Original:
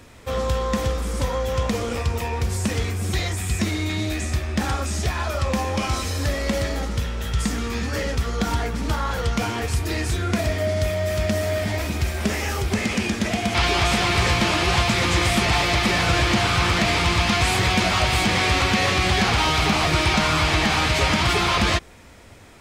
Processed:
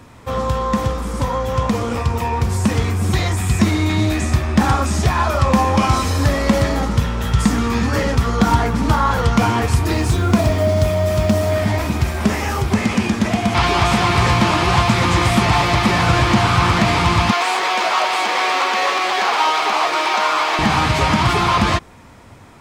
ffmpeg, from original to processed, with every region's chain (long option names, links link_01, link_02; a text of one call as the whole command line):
ffmpeg -i in.wav -filter_complex "[0:a]asettb=1/sr,asplit=3[link_01][link_02][link_03];[link_01]atrim=end=9.934[link_04];[link_02]atrim=start=9.93:end=11.52,asetpts=PTS-STARTPTS,afade=type=in:duration=0.004:curve=qsin,afade=type=out:start_time=1.586:duration=0.004:curve=qsin,equalizer=frequency=1800:width=2:gain=-5,acrusher=bits=7:mode=log:mix=0:aa=0.000001[link_05];[link_03]atrim=start=11.516[link_06];[link_04][link_05]acrossfade=duration=0.004:curve1=hsin:curve2=qsin[link_07];[link_07][link_06]acrossfade=duration=0.004:curve1=qsin:curve2=hsin,asettb=1/sr,asplit=3[link_08][link_09][link_10];[link_08]atrim=end=17.314[link_11];[link_09]atrim=start=17.31:end=20.59,asetpts=PTS-STARTPTS,afade=type=in:duration=0.004:curve=qsin,afade=type=out:start_time=3.276:duration=0.004:curve=qsin,highpass=frequency=410:width=0.5412,highpass=frequency=410:width=1.3066,adynamicsmooth=sensitivity=7:basefreq=5700[link_12];[link_10]atrim=start=20.586[link_13];[link_11][link_12]acrossfade=duration=0.004:curve1=hsin:curve2=qsin[link_14];[link_14][link_13]acrossfade=duration=0.004:curve1=qsin:curve2=hsin,equalizer=frequency=125:width_type=o:width=1:gain=8,equalizer=frequency=250:width_type=o:width=1:gain=5,equalizer=frequency=1000:width_type=o:width=1:gain=9,dynaudnorm=framelen=620:gausssize=9:maxgain=11.5dB,volume=-1dB" out.wav